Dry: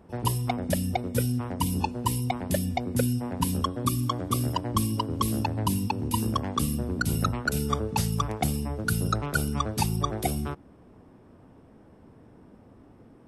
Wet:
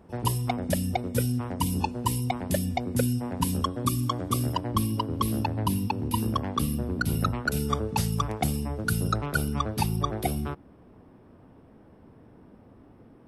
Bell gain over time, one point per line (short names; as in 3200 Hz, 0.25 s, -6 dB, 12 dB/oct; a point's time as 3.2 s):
bell 7200 Hz 0.73 oct
4.34 s 0 dB
4.79 s -8.5 dB
7.22 s -8.5 dB
7.67 s -2 dB
8.97 s -2 dB
9.57 s -8.5 dB